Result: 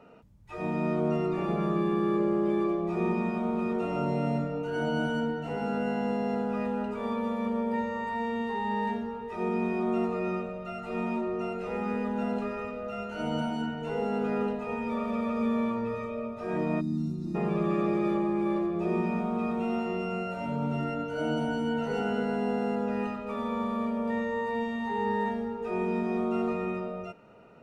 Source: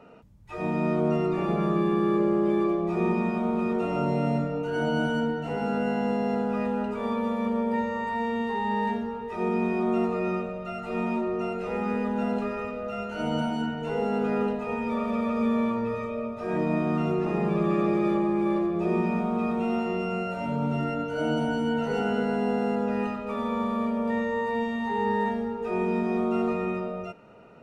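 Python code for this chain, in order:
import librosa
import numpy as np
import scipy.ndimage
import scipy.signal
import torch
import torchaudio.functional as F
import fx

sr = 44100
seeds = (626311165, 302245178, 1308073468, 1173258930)

y = fx.spec_box(x, sr, start_s=16.8, length_s=0.55, low_hz=350.0, high_hz=3500.0, gain_db=-25)
y = y * 10.0 ** (-3.0 / 20.0)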